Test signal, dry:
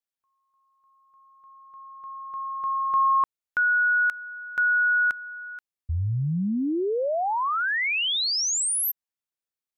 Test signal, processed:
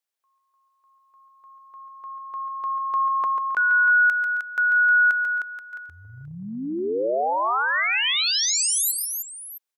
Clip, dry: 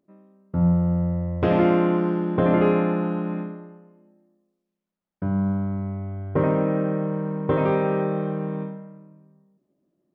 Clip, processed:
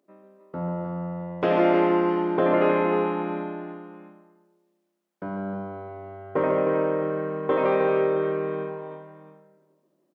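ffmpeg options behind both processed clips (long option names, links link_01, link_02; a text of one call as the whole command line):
ffmpeg -i in.wav -filter_complex "[0:a]aecho=1:1:141|143|268|309|664:0.224|0.355|0.126|0.422|0.126,asplit=2[link_01][link_02];[link_02]acompressor=threshold=-32dB:ratio=6:attack=0.28:release=288:detection=rms,volume=-2dB[link_03];[link_01][link_03]amix=inputs=2:normalize=0,highpass=360" out.wav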